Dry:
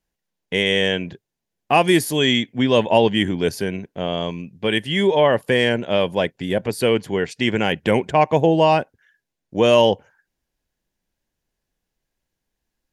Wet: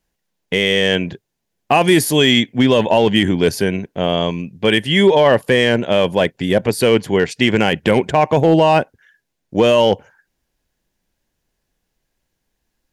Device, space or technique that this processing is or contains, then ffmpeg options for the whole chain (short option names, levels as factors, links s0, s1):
limiter into clipper: -af "alimiter=limit=0.355:level=0:latency=1:release=15,asoftclip=type=hard:threshold=0.299,volume=2.11"